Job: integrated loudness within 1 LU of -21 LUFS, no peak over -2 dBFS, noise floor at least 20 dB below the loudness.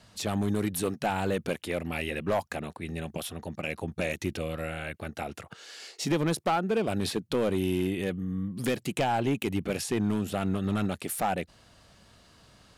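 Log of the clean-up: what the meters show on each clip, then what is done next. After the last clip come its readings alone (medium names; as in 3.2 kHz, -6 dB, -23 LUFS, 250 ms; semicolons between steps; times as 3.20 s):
clipped samples 1.0%; clipping level -20.5 dBFS; loudness -30.5 LUFS; peak level -20.5 dBFS; loudness target -21.0 LUFS
-> clip repair -20.5 dBFS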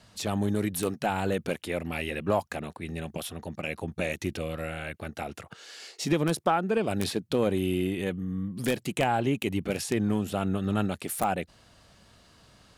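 clipped samples 0.0%; loudness -30.0 LUFS; peak level -11.5 dBFS; loudness target -21.0 LUFS
-> trim +9 dB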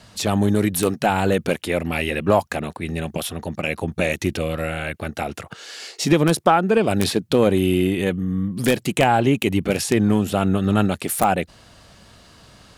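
loudness -21.0 LUFS; peak level -2.5 dBFS; noise floor -49 dBFS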